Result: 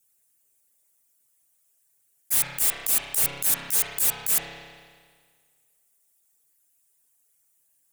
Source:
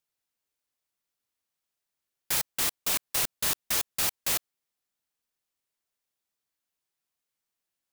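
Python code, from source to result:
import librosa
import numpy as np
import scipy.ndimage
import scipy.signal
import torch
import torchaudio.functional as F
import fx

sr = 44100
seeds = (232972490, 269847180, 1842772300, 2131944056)

y = fx.envelope_sharpen(x, sr, power=2.0)
y = fx.peak_eq(y, sr, hz=1100.0, db=-5.5, octaves=0.51)
y = y + 0.99 * np.pad(y, (int(7.1 * sr / 1000.0), 0))[:len(y)]
y = fx.rev_spring(y, sr, rt60_s=1.7, pass_ms=(30,), chirp_ms=55, drr_db=5.5)
y = fx.auto_swell(y, sr, attack_ms=111.0)
y = 10.0 ** (-29.0 / 20.0) * np.tanh(y / 10.0 ** (-29.0 / 20.0))
y = fx.high_shelf_res(y, sr, hz=6200.0, db=12.0, q=1.5)
y = np.clip(y, -10.0 ** (-22.0 / 20.0), 10.0 ** (-22.0 / 20.0))
y = y * 10.0 ** (4.0 / 20.0)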